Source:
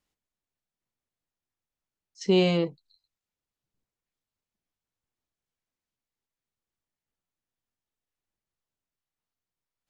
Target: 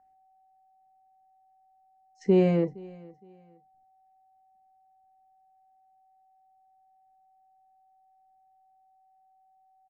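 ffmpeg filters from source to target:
-filter_complex "[0:a]equalizer=f=1300:w=1.2:g=-12.5,aeval=exprs='val(0)+0.000631*sin(2*PI*760*n/s)':c=same,highshelf=f=2400:t=q:w=3:g=-13,asplit=2[s0][s1];[s1]aecho=0:1:465|930:0.0708|0.0198[s2];[s0][s2]amix=inputs=2:normalize=0,volume=1.19"

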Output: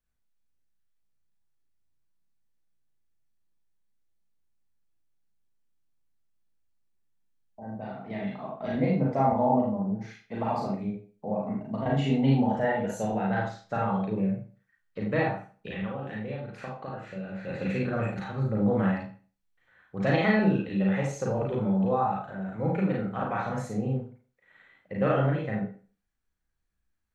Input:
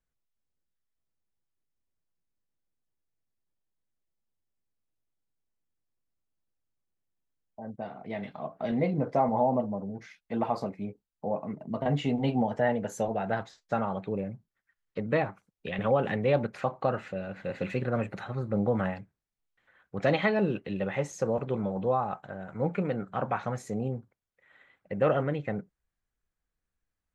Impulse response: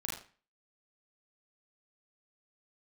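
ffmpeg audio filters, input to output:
-filter_complex "[0:a]asettb=1/sr,asplit=3[s0][s1][s2];[s0]atrim=end=15.674[s3];[s1]atrim=start=15.67:end=17.47,asetpts=PTS-STARTPTS,afade=t=in:d=0.004:c=qsin,afade=t=out:st=1.796:d=0.004:c=qsin,acompressor=threshold=0.0178:ratio=6[s4];[s2]atrim=start=17.466[s5];[s3][s4]acrossfade=d=0.004:c1=hsin:c2=qsin[s6];[s6][s5]acrossfade=d=0.004:c1=qsin:c2=hsin[s7];[1:a]atrim=start_sample=2205[s8];[s7][s8]afir=irnorm=-1:irlink=0"

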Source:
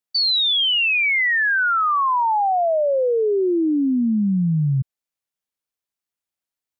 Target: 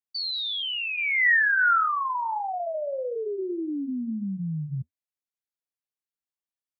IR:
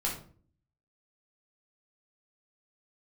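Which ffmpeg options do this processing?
-filter_complex "[0:a]flanger=delay=2.6:depth=8.1:regen=-66:speed=1.6:shape=triangular,asplit=3[s0][s1][s2];[s0]afade=t=out:st=0.96:d=0.02[s3];[s1]highpass=120,equalizer=f=160:t=q:w=4:g=9,equalizer=f=250:t=q:w=4:g=-8,equalizer=f=370:t=q:w=4:g=7,equalizer=f=660:t=q:w=4:g=4,equalizer=f=1400:t=q:w=4:g=9,equalizer=f=1900:t=q:w=4:g=10,lowpass=f=3800:w=0.5412,lowpass=f=3800:w=1.3066,afade=t=in:st=0.96:d=0.02,afade=t=out:st=2.38:d=0.02[s4];[s2]afade=t=in:st=2.38:d=0.02[s5];[s3][s4][s5]amix=inputs=3:normalize=0,volume=0.447"

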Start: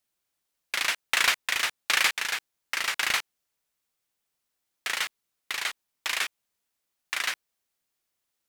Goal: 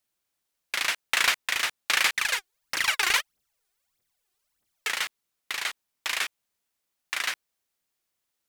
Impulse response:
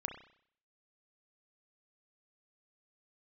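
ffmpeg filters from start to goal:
-filter_complex "[0:a]asettb=1/sr,asplit=3[s0][s1][s2];[s0]atrim=end=2.134[s3];[s1]atrim=start=2.13:end=4.9,asetpts=PTS-STARTPTS,afade=t=in:d=0.004:c=qsin,afade=t=out:st=2.766:d=0.004:c=qsin,aphaser=in_gain=1:out_gain=1:delay=2.9:decay=0.71:speed=1.6:type=triangular[s4];[s2]atrim=start=4.896[s5];[s3][s4]acrossfade=d=0.004:c1=hsin:c2=qsin[s6];[s6][s5]acrossfade=d=0.004:c1=qsin:c2=hsin"

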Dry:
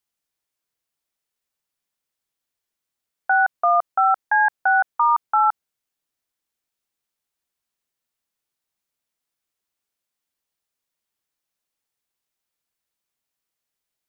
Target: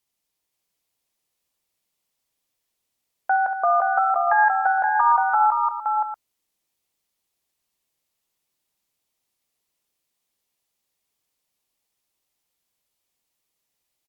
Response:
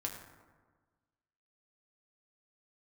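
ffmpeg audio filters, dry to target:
-af "equalizer=f=1500:w=2.6:g=-6.5,alimiter=limit=0.158:level=0:latency=1,aecho=1:1:49|68|186|375|523|638:0.15|0.316|0.282|0.141|0.631|0.251,volume=1.5" -ar 48000 -c:a libopus -b:a 96k

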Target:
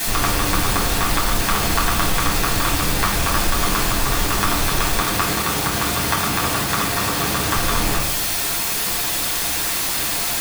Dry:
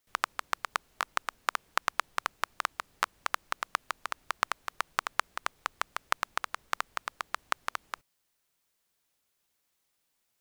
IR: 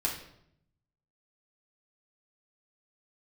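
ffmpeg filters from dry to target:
-filter_complex "[0:a]aeval=exprs='val(0)+0.5*0.1*sgn(val(0))':c=same,asettb=1/sr,asplit=3[s0][s1][s2];[s0]atrim=end=5.004[s3];[s1]atrim=start=5:end=7.54,asetpts=PTS-STARTPTS,afade=t=in:d=0.004:c=qsin,afade=t=out:st=2.536:d=0.004:c=qsin,highpass=89[s4];[s2]atrim=start=7.536[s5];[s3][s4]acrossfade=d=0.004:c1=hsin:c2=qsin[s6];[s6][s5]acrossfade=d=0.004:c1=qsin:c2=hsin[s7];[1:a]atrim=start_sample=2205[s8];[s7][s8]afir=irnorm=-1:irlink=0"

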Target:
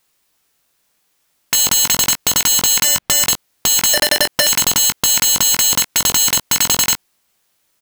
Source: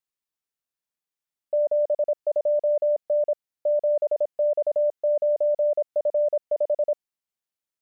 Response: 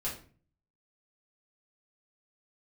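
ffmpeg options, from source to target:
-filter_complex "[0:a]asettb=1/sr,asplit=3[s0][s1][s2];[s0]atrim=end=2.844[s3];[s1]atrim=start=2.84:end=3.27,asetpts=PTS-STARTPTS,afade=t=in:d=0.004:c=qsin,afade=t=out:st=0.426:d=0.004:c=qsin,bass=f=250:g=9,treble=f=4000:g=-11[s4];[s2]atrim=start=3.266[s5];[s3][s4]acrossfade=d=0.004:c1=hsin:c2=qsin[s6];[s6][s5]acrossfade=d=0.004:c1=qsin:c2=hsin,asettb=1/sr,asplit=3[s7][s8][s9];[s7]atrim=end=3.934[s10];[s8]atrim=start=3.93:end=4.47,asetpts=PTS-STARTPTS,afade=t=in:d=0.004:c=qsin,afade=t=out:st=0.536:d=0.004:c=qsin,acompressor=threshold=0.0562:ratio=4[s11];[s9]atrim=start=4.466[s12];[s10][s11]acrossfade=d=0.004:c1=hsin:c2=qsin[s13];[s13][s12]acrossfade=d=0.004:c1=qsin:c2=hsin,aeval=exprs='(mod(33.5*val(0)+1,2)-1)/33.5':c=same,asplit=2[s14][s15];[s15]adelay=20,volume=0.355[s16];[s14][s16]amix=inputs=2:normalize=0,alimiter=level_in=35.5:limit=0.891:release=50:level=0:latency=1,volume=0.531"

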